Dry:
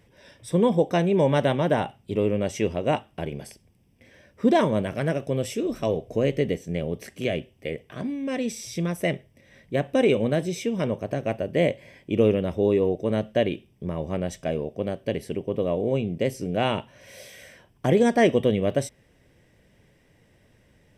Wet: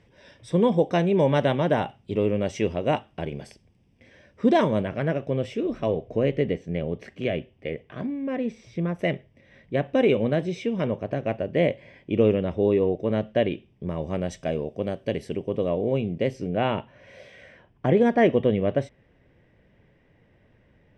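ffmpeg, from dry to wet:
-af "asetnsamples=n=441:p=0,asendcmd='4.83 lowpass f 3000;8.06 lowpass f 1800;8.99 lowpass f 3500;13.89 lowpass f 7000;15.69 lowpass f 3900;16.49 lowpass f 2500',lowpass=5.5k"

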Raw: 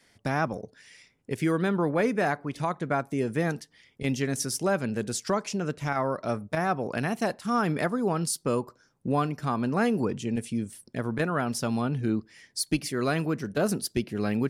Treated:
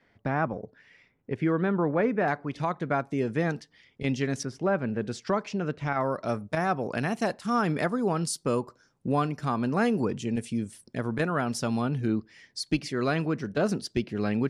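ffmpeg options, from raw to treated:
-af "asetnsamples=n=441:p=0,asendcmd='2.28 lowpass f 5100;4.43 lowpass f 2100;5.05 lowpass f 3600;6.01 lowpass f 9200;12.07 lowpass f 5500',lowpass=2.1k"

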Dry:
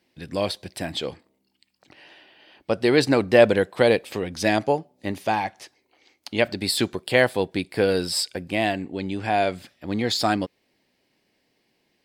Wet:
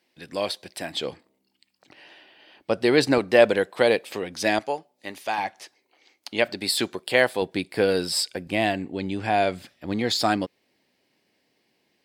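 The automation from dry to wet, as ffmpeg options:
-af "asetnsamples=n=441:p=0,asendcmd='0.97 highpass f 150;3.18 highpass f 330;4.59 highpass f 1000;5.38 highpass f 340;7.42 highpass f 150;8.46 highpass f 47;9.93 highpass f 120',highpass=f=430:p=1"

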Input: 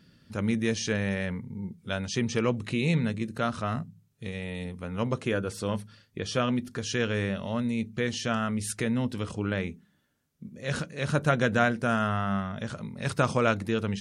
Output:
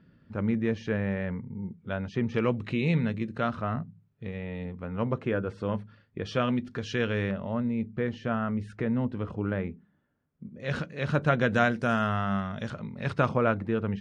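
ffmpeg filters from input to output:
-af "asetnsamples=n=441:p=0,asendcmd='2.34 lowpass f 3000;3.55 lowpass f 1900;6.25 lowpass f 3200;7.31 lowpass f 1500;10.6 lowpass f 3400;11.51 lowpass f 6000;12.7 lowpass f 3000;13.29 lowpass f 1700',lowpass=1.7k"

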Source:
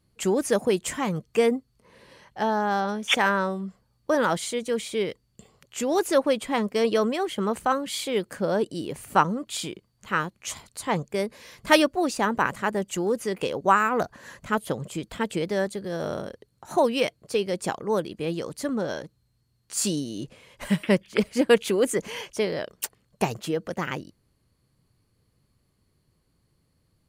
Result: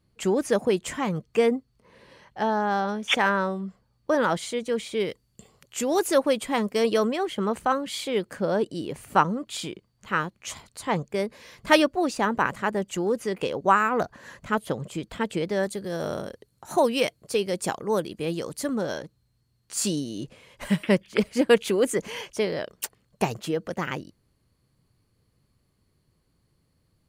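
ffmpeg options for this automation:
-af "asetnsamples=n=441:p=0,asendcmd='5 equalizer g 3.5;7.07 equalizer g -5;15.63 equalizer g 5;18.98 equalizer g -1.5',equalizer=f=13k:t=o:w=1.6:g=-6.5"

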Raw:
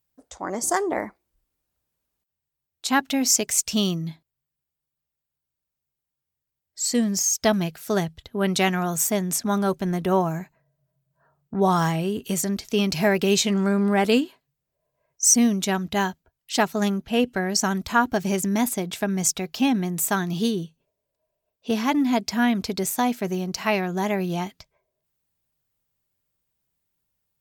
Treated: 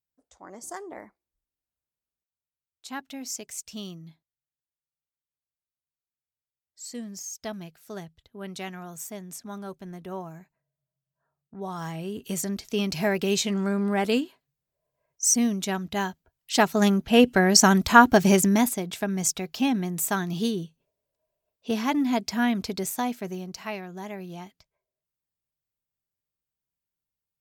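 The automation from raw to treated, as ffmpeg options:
-af "volume=6dB,afade=t=in:st=11.74:d=0.63:silence=0.298538,afade=t=in:st=16.1:d=1.41:silence=0.298538,afade=t=out:st=18.29:d=0.47:silence=0.354813,afade=t=out:st=22.6:d=1.21:silence=0.334965"

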